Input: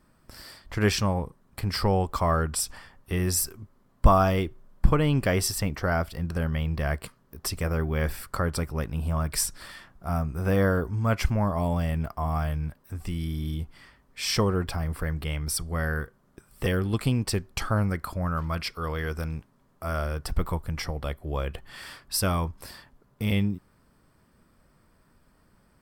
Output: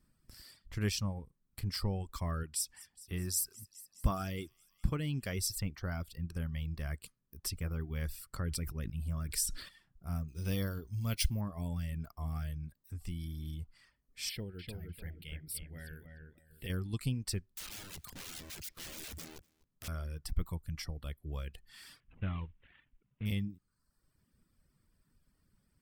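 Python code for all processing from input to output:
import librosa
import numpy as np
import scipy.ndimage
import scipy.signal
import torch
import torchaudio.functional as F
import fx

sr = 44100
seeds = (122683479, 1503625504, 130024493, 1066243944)

y = fx.chain(x, sr, fx.highpass(hz=82.0, slope=6),
    fx.echo_wet_highpass(ms=207, feedback_pct=62, hz=2900.0, wet_db=-14.0), at=(2.43, 5.39))
y = fx.chain(y, sr, fx.peak_eq(hz=850.0, db=-6.5, octaves=0.41),
    fx.sustainer(db_per_s=51.0), at=(8.44, 9.69))
y = fx.chain(y, sr, fx.high_shelf_res(hz=2400.0, db=9.0, q=1.5),
    fx.resample_bad(factor=3, down='filtered', up='hold'), at=(10.28, 11.41))
y = fx.chain(y, sr, fx.low_shelf(hz=340.0, db=-9.5),
    fx.fixed_phaser(hz=2700.0, stages=4),
    fx.echo_filtered(ms=298, feedback_pct=38, hz=1900.0, wet_db=-3.5), at=(14.29, 16.7))
y = fx.chain(y, sr, fx.overflow_wrap(gain_db=30.0),
    fx.echo_single(ms=248, db=-17.5), at=(17.45, 19.88))
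y = fx.chain(y, sr, fx.cvsd(bps=16000),
    fx.peak_eq(hz=490.0, db=-2.5, octaves=1.6), at=(22.0, 23.26))
y = fx.dereverb_blind(y, sr, rt60_s=0.82)
y = fx.peak_eq(y, sr, hz=790.0, db=-13.0, octaves=2.6)
y = F.gain(torch.from_numpy(y), -6.0).numpy()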